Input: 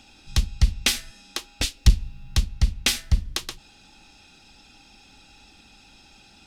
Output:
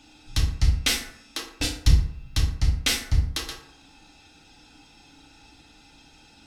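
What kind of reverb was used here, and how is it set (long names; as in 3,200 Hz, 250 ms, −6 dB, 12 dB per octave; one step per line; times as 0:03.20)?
feedback delay network reverb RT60 0.67 s, low-frequency decay 0.9×, high-frequency decay 0.5×, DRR −4 dB
level −5 dB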